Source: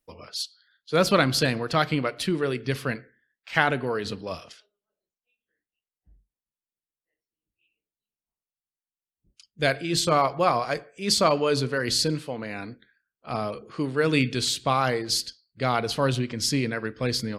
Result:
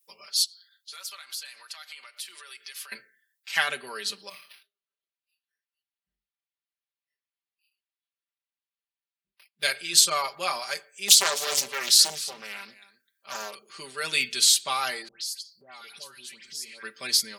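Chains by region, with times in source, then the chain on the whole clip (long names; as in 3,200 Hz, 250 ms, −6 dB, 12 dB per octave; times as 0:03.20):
0:00.44–0:02.92: high-pass filter 980 Hz + downward compressor 5 to 1, threshold −42 dBFS
0:04.29–0:09.63: parametric band 620 Hz −8.5 dB 1.4 octaves + chorus effect 2.5 Hz, delay 20 ms, depth 6.6 ms + linearly interpolated sample-rate reduction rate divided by 6×
0:11.08–0:13.55: single-tap delay 256 ms −17 dB + highs frequency-modulated by the lows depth 0.97 ms
0:15.08–0:16.83: all-pass dispersion highs, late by 134 ms, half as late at 1,600 Hz + downward compressor 4 to 1, threshold −41 dBFS
whole clip: first difference; comb filter 5.1 ms, depth 83%; level +8.5 dB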